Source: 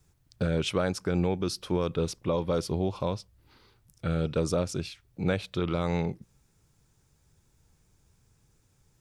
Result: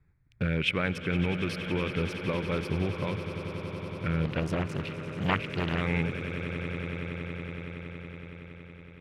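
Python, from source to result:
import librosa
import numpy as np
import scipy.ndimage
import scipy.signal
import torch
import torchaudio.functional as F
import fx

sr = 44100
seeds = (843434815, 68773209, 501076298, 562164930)

y = fx.wiener(x, sr, points=15)
y = fx.curve_eq(y, sr, hz=(160.0, 310.0, 710.0, 1200.0, 2300.0, 3900.0, 6800.0, 11000.0), db=(0, -3, -7, -1, 13, -3, -13, -5))
y = fx.echo_swell(y, sr, ms=93, loudest=8, wet_db=-15)
y = fx.doppler_dist(y, sr, depth_ms=0.65, at=(4.25, 5.81))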